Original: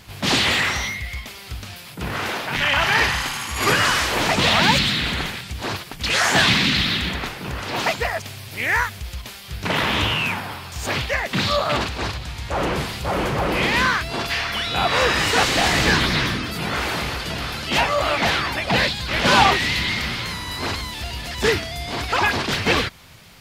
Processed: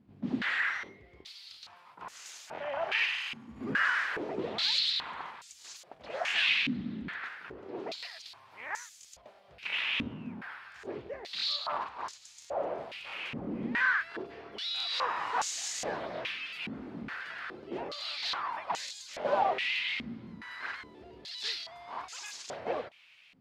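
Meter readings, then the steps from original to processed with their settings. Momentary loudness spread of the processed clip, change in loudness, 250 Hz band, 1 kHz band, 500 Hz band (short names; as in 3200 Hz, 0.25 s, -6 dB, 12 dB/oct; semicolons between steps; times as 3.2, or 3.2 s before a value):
19 LU, -13.0 dB, -14.0 dB, -14.0 dB, -13.5 dB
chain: crackling interface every 0.34 s, samples 1024, repeat, from 0.84; stepped band-pass 2.4 Hz 240–6800 Hz; gain -3.5 dB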